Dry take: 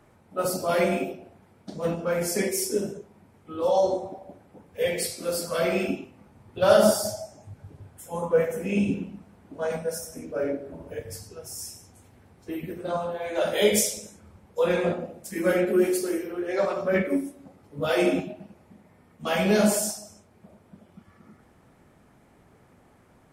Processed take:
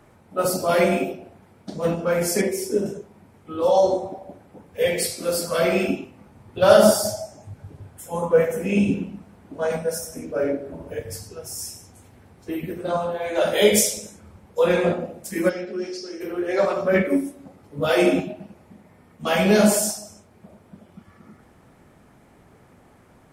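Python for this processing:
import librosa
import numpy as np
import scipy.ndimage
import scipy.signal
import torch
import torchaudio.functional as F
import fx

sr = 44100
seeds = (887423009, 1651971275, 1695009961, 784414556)

y = fx.high_shelf(x, sr, hz=2300.0, db=-9.5, at=(2.41, 2.86))
y = fx.ladder_lowpass(y, sr, hz=5600.0, resonance_pct=80, at=(15.48, 16.2), fade=0.02)
y = F.gain(torch.from_numpy(y), 4.5).numpy()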